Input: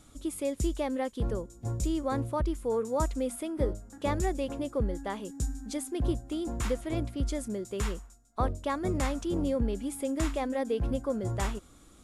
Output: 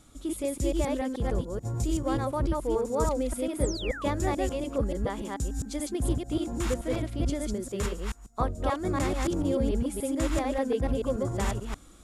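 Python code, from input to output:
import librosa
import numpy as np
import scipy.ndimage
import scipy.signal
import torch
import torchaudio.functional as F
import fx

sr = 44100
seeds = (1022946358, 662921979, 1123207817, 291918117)

y = fx.reverse_delay(x, sr, ms=145, wet_db=-1)
y = fx.spec_paint(y, sr, seeds[0], shape='fall', start_s=3.61, length_s=0.44, low_hz=1000.0, high_hz=9900.0, level_db=-39.0)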